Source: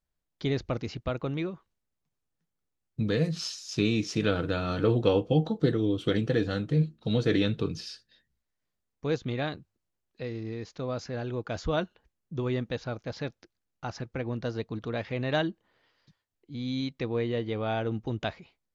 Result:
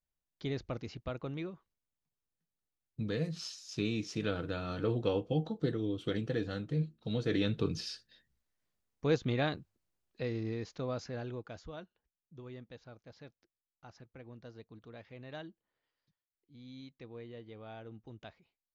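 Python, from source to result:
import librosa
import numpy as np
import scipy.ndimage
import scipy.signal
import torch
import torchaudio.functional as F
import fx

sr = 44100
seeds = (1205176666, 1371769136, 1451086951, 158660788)

y = fx.gain(x, sr, db=fx.line((7.23, -8.0), (7.79, -0.5), (10.44, -0.5), (11.3, -7.0), (11.72, -18.0)))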